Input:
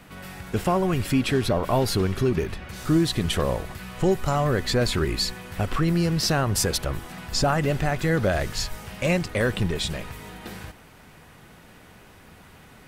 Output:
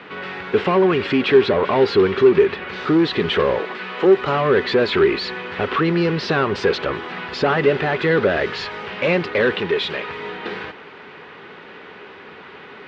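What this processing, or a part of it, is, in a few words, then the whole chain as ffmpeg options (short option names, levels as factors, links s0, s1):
overdrive pedal into a guitar cabinet: -filter_complex "[0:a]asettb=1/sr,asplit=3[s0][s1][s2];[s0]atrim=end=3.594[s3];[s1]atrim=start=3.59:end=4.17,asetpts=PTS-STARTPTS,afade=t=in:d=0.004:c=qsin,afade=t=out:st=0.576:d=0.004:c=qsin,highpass=f=190:w=0.5412,highpass=f=190:w=1.3066[s4];[s2]atrim=start=4.166[s5];[s3][s4]acrossfade=d=0.004:c1=hsin:c2=qsin[s6];[s6][s5]acrossfade=d=0.004:c1=qsin:c2=hsin,asettb=1/sr,asplit=3[s7][s8][s9];[s7]atrim=end=9.534[s10];[s8]atrim=start=9.53:end=10.09,asetpts=PTS-STARTPTS,afade=t=in:d=0.004:c=qsin,afade=t=out:st=0.556:d=0.004:c=qsin,lowshelf=f=360:g=-7.5[s11];[s9]atrim=start=10.086[s12];[s10][s11]acrossfade=d=0.004:c1=hsin:c2=qsin[s13];[s13][s12]acrossfade=d=0.004:c1=qsin:c2=hsin,asplit=2[s14][s15];[s15]highpass=f=720:p=1,volume=10,asoftclip=type=tanh:threshold=0.355[s16];[s14][s16]amix=inputs=2:normalize=0,lowpass=f=3000:p=1,volume=0.501,highpass=100,equalizer=f=120:t=q:w=4:g=-6,equalizer=f=410:t=q:w=4:g=10,equalizer=f=680:t=q:w=4:g=-6,lowpass=f=3900:w=0.5412,lowpass=f=3900:w=1.3066"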